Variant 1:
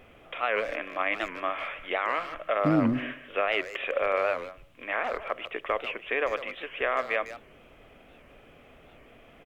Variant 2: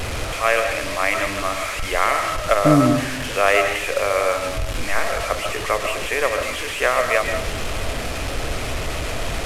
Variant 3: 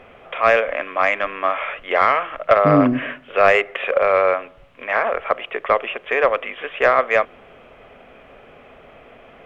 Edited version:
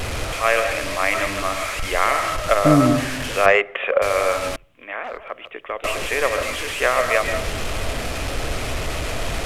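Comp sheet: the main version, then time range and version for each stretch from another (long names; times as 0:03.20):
2
0:03.46–0:04.02: punch in from 3
0:04.56–0:05.84: punch in from 1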